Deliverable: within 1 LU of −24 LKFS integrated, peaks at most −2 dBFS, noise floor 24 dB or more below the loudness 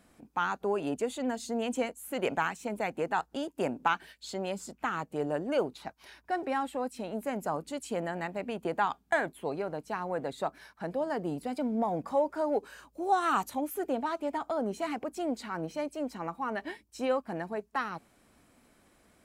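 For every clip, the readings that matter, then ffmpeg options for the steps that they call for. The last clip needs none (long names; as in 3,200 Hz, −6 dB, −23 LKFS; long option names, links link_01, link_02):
integrated loudness −33.0 LKFS; sample peak −13.5 dBFS; target loudness −24.0 LKFS
→ -af "volume=9dB"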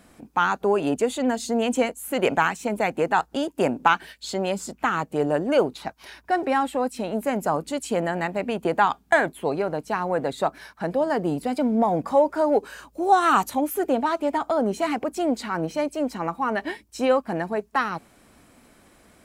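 integrated loudness −24.0 LKFS; sample peak −4.5 dBFS; background noise floor −57 dBFS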